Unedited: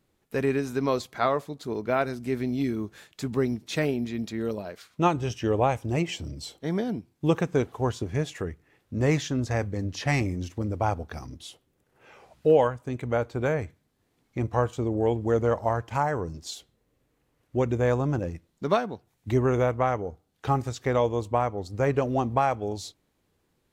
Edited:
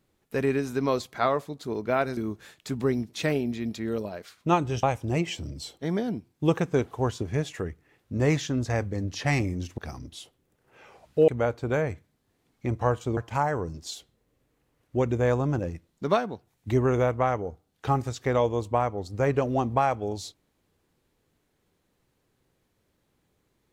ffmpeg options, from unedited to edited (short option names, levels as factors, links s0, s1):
-filter_complex "[0:a]asplit=6[s0][s1][s2][s3][s4][s5];[s0]atrim=end=2.172[s6];[s1]atrim=start=2.698:end=5.362[s7];[s2]atrim=start=5.638:end=10.592[s8];[s3]atrim=start=11.058:end=12.562[s9];[s4]atrim=start=12.998:end=14.892[s10];[s5]atrim=start=15.768[s11];[s6][s7]acrossfade=d=0.004:c1=hsin:c2=hsin[s12];[s12][s8]acrossfade=d=0.004:c1=hsin:c2=hsin[s13];[s13][s9]acrossfade=d=0.004:c1=hsin:c2=hsin[s14];[s14][s10]acrossfade=d=0.004:c1=hsin:c2=hsin[s15];[s15][s11]acrossfade=d=0.004:c1=hsin:c2=hsin"